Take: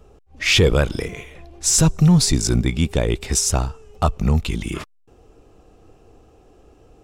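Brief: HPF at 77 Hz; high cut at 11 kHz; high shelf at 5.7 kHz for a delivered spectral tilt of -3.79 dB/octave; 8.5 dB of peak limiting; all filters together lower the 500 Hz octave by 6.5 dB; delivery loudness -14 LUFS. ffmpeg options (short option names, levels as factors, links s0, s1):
-af "highpass=77,lowpass=11000,equalizer=f=500:t=o:g=-8,highshelf=f=5700:g=-3.5,volume=3.55,alimiter=limit=0.708:level=0:latency=1"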